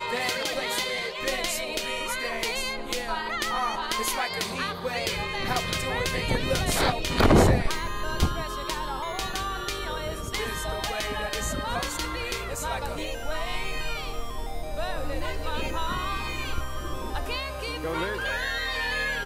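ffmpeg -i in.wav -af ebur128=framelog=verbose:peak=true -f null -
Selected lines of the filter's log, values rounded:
Integrated loudness:
  I:         -28.2 LUFS
  Threshold: -38.2 LUFS
Loudness range:
  LRA:         7.6 LU
  Threshold: -48.2 LUFS
  LRA low:   -32.0 LUFS
  LRA high:  -24.5 LUFS
True peak:
  Peak:      -10.8 dBFS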